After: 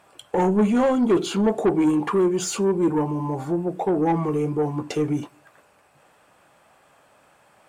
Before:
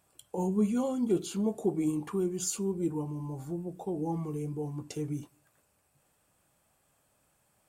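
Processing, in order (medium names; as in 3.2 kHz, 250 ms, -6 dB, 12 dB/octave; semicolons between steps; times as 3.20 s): treble shelf 3.7 kHz -9.5 dB; overdrive pedal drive 20 dB, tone 3.1 kHz, clips at -17.5 dBFS; trim +7 dB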